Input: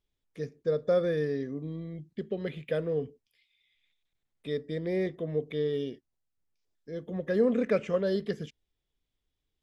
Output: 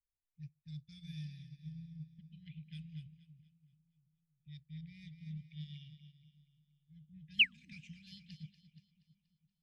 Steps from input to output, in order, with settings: dynamic bell 300 Hz, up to -6 dB, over -44 dBFS, Q 1.7; level-controlled noise filter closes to 520 Hz, open at -25 dBFS; two-band feedback delay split 450 Hz, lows 336 ms, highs 238 ms, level -8 dB; painted sound fall, 7.39–7.72 s, 200–3300 Hz -23 dBFS; Chebyshev band-stop 160–2500 Hz, order 4; upward expansion 1.5:1, over -56 dBFS; trim +1.5 dB

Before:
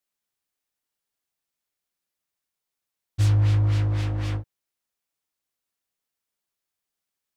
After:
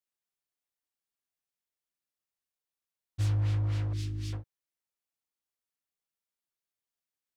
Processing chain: 3.93–4.33 s: FFT filter 370 Hz 0 dB, 600 Hz -26 dB, 4.8 kHz +7 dB; trim -8.5 dB

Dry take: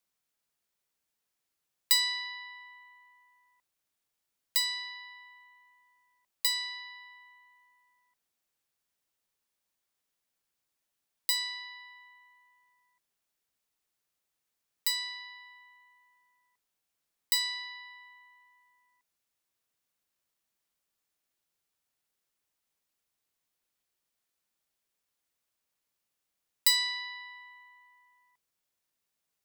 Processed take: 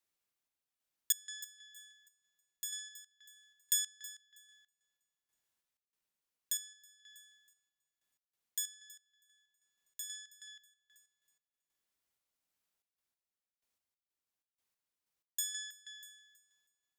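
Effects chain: on a send: echo whose repeats swap between lows and highs 279 ms, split 2.1 kHz, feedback 57%, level -12 dB; on the sum: random-step tremolo 3.6 Hz, depth 95%; speed mistake 45 rpm record played at 78 rpm

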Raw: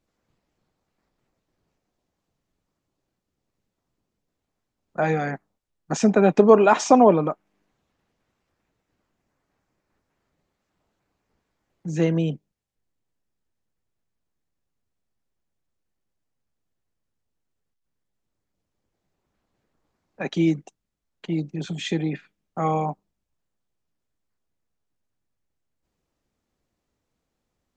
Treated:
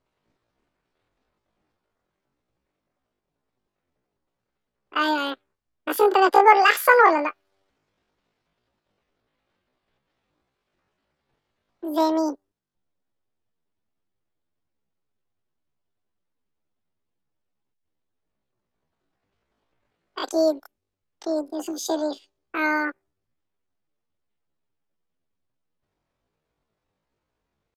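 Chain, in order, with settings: level-controlled noise filter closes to 2.8 kHz, open at -21.5 dBFS; pitch shift +11.5 st

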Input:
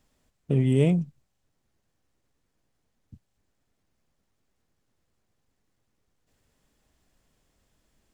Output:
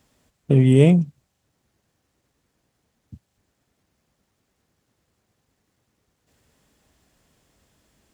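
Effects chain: high-pass 55 Hz; trim +7.5 dB

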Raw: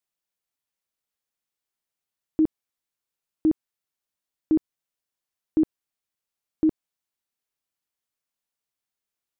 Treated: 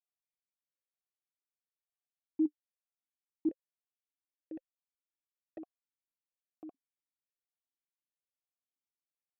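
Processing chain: 4.57–5.58 s: comb filter that takes the minimum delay 0.81 ms; wow and flutter 26 cents; stepped vowel filter 4.3 Hz; trim -6 dB

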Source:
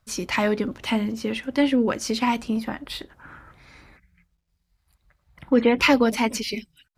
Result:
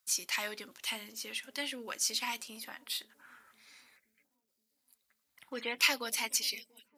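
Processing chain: differentiator; feedback echo behind a low-pass 522 ms, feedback 53%, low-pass 460 Hz, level -20 dB; trim +2 dB

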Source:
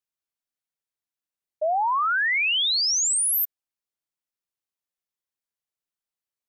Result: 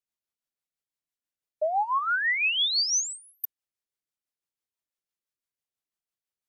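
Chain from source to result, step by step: 1.64–2.17 s: hysteresis with a dead band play -57 dBFS; 2.84–3.44 s: Chebyshev low-pass 6.5 kHz, order 4; rotary cabinet horn 6 Hz

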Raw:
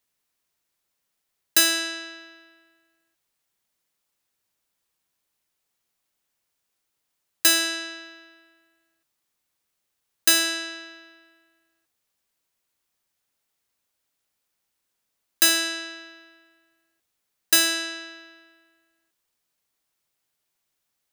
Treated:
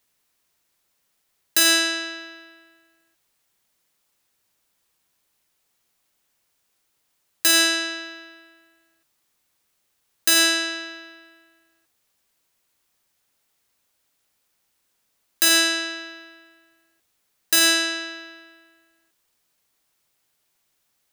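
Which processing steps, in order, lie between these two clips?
peak limiter -14 dBFS, peak gain reduction 9.5 dB; trim +7 dB

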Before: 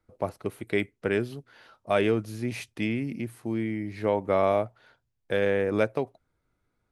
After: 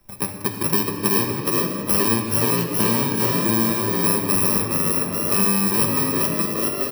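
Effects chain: bit-reversed sample order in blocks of 64 samples; peaking EQ 6.9 kHz -6.5 dB 1 oct; frequency-shifting echo 418 ms, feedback 51%, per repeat +62 Hz, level -4 dB; level rider gain up to 11.5 dB; peaking EQ 970 Hz +4 dB 0.93 oct; simulated room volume 1600 m³, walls mixed, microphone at 1.2 m; three bands compressed up and down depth 70%; trim -4 dB

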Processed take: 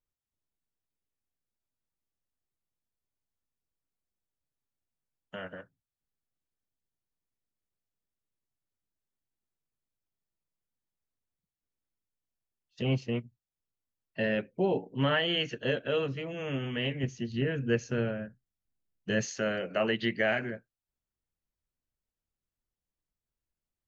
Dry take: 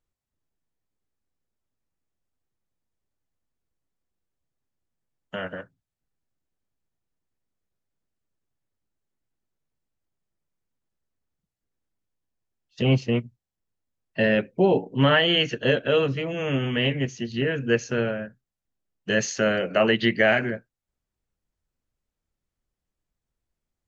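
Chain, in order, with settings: 17.03–19.25 s: bass shelf 260 Hz +8 dB; trim -8.5 dB

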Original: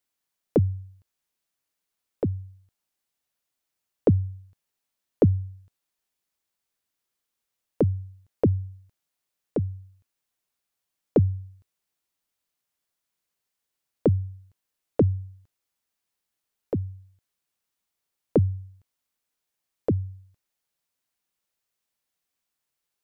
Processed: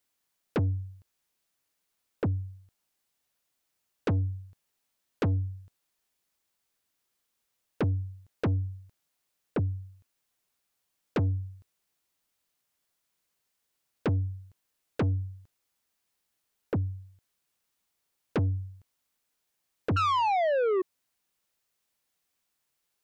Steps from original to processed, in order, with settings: painted sound fall, 19.96–20.82 s, 360–1400 Hz -23 dBFS; saturation -27 dBFS, distortion -6 dB; trim +3.5 dB

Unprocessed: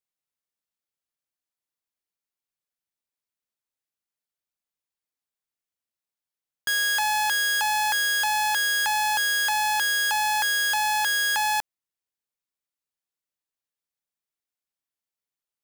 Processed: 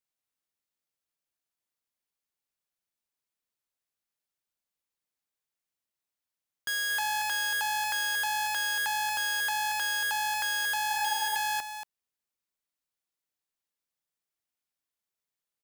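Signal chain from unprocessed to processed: peak limiter -25.5 dBFS, peak gain reduction 6.5 dB; delay 231 ms -9 dB; spectral replace 10.93–11.36 s, 560–2000 Hz

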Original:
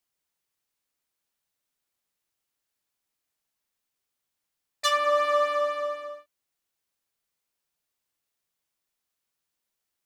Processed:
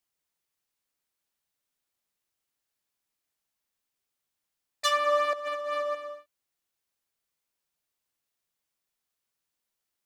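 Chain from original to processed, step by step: 5.33–5.95 s: compressor with a negative ratio -31 dBFS, ratio -1; trim -1.5 dB

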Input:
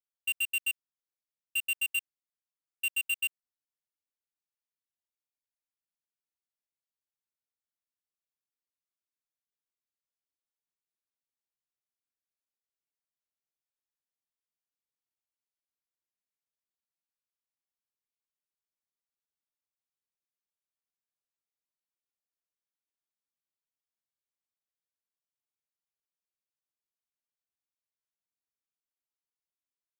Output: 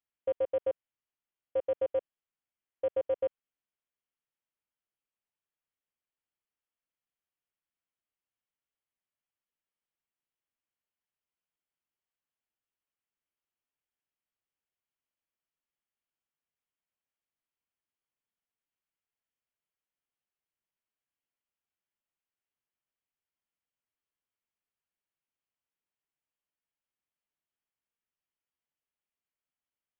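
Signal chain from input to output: frequency inversion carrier 3.3 kHz; trim +2 dB

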